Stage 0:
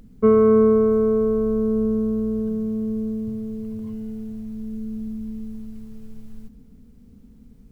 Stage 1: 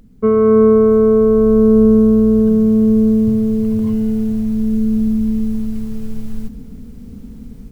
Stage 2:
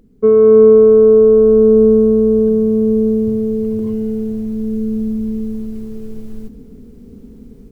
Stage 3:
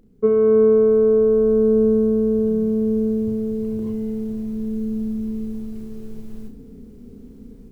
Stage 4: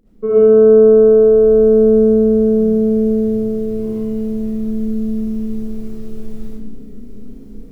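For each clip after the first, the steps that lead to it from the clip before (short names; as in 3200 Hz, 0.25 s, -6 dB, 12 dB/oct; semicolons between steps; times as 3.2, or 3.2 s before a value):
AGC gain up to 14 dB; gain +1 dB
bell 390 Hz +13 dB 0.87 oct; gain -6.5 dB
flutter echo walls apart 5.7 m, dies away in 0.28 s; gain -4.5 dB
digital reverb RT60 0.79 s, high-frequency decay 0.8×, pre-delay 35 ms, DRR -9 dB; gain -3.5 dB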